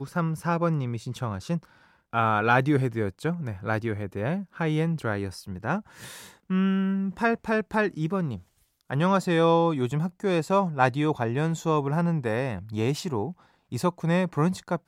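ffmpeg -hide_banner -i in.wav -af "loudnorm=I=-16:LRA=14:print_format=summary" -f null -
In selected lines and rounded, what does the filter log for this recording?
Input Integrated:    -26.7 LUFS
Input True Peak:      -6.7 dBTP
Input LRA:             3.7 LU
Input Threshold:     -37.0 LUFS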